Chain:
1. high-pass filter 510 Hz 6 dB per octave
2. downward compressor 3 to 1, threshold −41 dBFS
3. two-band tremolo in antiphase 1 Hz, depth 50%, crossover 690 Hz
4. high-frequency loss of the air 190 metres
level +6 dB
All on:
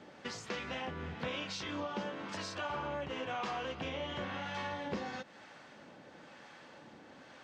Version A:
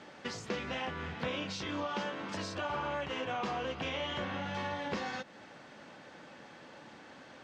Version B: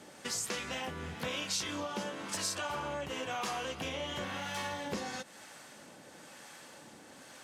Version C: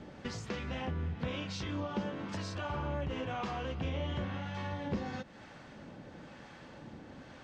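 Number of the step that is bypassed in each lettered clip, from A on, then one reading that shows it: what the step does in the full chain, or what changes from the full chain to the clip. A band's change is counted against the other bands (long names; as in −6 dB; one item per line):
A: 3, change in integrated loudness +2.5 LU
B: 4, 8 kHz band +13.5 dB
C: 1, 125 Hz band +11.5 dB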